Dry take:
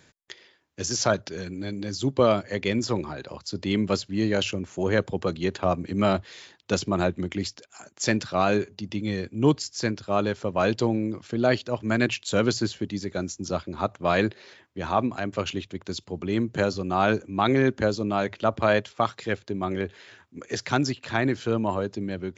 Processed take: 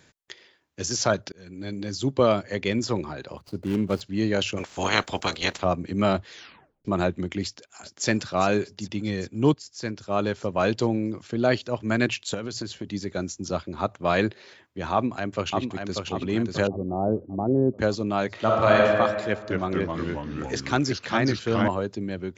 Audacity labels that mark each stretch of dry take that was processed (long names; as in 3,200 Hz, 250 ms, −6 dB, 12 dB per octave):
1.320000	1.730000	fade in
3.370000	4.010000	running median over 25 samples
4.560000	5.610000	ceiling on every frequency bin ceiling under each frame's peak by 27 dB
6.340000	6.340000	tape stop 0.51 s
7.430000	8.070000	delay throw 400 ms, feedback 70%, level −12 dB
9.540000	10.270000	fade in, from −12.5 dB
12.340000	12.930000	downward compressor 10 to 1, threshold −27 dBFS
14.930000	16.020000	delay throw 590 ms, feedback 50%, level −4.5 dB
16.670000	17.790000	inverse Chebyshev low-pass filter stop band from 3,100 Hz, stop band 70 dB
18.300000	18.780000	thrown reverb, RT60 1.8 s, DRR −2.5 dB
19.280000	21.680000	delay with pitch and tempo change per echo 224 ms, each echo −2 semitones, echoes 3